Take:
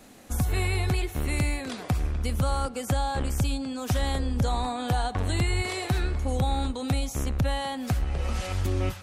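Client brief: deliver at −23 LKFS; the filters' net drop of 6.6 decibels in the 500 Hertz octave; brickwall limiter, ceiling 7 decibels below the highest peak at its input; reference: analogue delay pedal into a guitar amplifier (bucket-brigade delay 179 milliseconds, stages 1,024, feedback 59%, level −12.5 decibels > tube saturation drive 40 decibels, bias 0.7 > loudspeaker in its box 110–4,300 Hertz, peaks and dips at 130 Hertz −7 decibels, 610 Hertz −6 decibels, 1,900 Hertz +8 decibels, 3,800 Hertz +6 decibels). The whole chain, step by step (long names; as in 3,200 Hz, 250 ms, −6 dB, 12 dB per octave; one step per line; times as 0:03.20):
parametric band 500 Hz −6 dB
brickwall limiter −22.5 dBFS
bucket-brigade delay 179 ms, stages 1,024, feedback 59%, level −12.5 dB
tube saturation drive 40 dB, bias 0.7
loudspeaker in its box 110–4,300 Hz, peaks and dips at 130 Hz −7 dB, 610 Hz −6 dB, 1,900 Hz +8 dB, 3,800 Hz +6 dB
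level +21.5 dB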